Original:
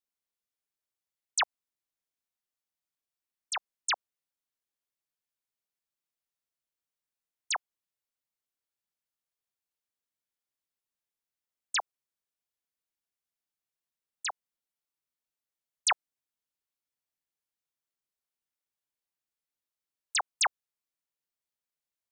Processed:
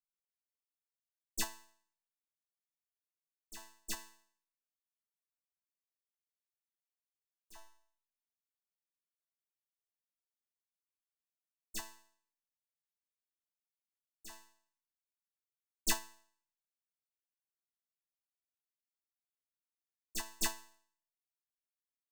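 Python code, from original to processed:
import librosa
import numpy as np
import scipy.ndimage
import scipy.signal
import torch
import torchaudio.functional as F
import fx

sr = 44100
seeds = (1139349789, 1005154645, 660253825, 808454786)

y = fx.lower_of_two(x, sr, delay_ms=1.1)
y = fx.high_shelf(y, sr, hz=6500.0, db=7.5)
y = fx.clip_hard(y, sr, threshold_db=-37.0, at=(3.93, 7.55), fade=0.02)
y = fx.peak_eq(y, sr, hz=2600.0, db=-4.5, octaves=1.9)
y = fx.resonator_bank(y, sr, root=57, chord='fifth', decay_s=0.56)
y = fx.upward_expand(y, sr, threshold_db=-51.0, expansion=2.5)
y = F.gain(torch.from_numpy(y), 16.5).numpy()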